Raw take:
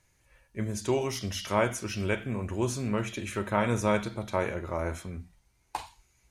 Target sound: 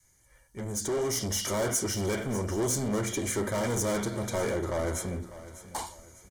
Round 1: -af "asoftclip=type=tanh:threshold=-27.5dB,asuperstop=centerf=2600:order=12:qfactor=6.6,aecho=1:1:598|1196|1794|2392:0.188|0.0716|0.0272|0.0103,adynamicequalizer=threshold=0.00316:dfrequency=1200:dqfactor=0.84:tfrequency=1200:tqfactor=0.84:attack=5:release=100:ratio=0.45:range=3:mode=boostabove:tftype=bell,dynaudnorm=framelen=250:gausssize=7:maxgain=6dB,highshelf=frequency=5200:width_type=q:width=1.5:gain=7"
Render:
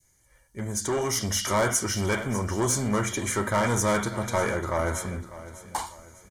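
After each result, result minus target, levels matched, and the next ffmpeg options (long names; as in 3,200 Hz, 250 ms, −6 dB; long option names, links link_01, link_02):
1,000 Hz band +4.5 dB; soft clipping: distortion −5 dB
-af "asoftclip=type=tanh:threshold=-27.5dB,asuperstop=centerf=2600:order=12:qfactor=6.6,aecho=1:1:598|1196|1794|2392:0.188|0.0716|0.0272|0.0103,adynamicequalizer=threshold=0.00316:dfrequency=430:dqfactor=0.84:tfrequency=430:tqfactor=0.84:attack=5:release=100:ratio=0.45:range=3:mode=boostabove:tftype=bell,dynaudnorm=framelen=250:gausssize=7:maxgain=6dB,highshelf=frequency=5200:width_type=q:width=1.5:gain=7"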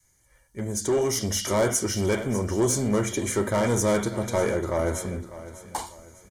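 soft clipping: distortion −5 dB
-af "asoftclip=type=tanh:threshold=-36dB,asuperstop=centerf=2600:order=12:qfactor=6.6,aecho=1:1:598|1196|1794|2392:0.188|0.0716|0.0272|0.0103,adynamicequalizer=threshold=0.00316:dfrequency=430:dqfactor=0.84:tfrequency=430:tqfactor=0.84:attack=5:release=100:ratio=0.45:range=3:mode=boostabove:tftype=bell,dynaudnorm=framelen=250:gausssize=7:maxgain=6dB,highshelf=frequency=5200:width_type=q:width=1.5:gain=7"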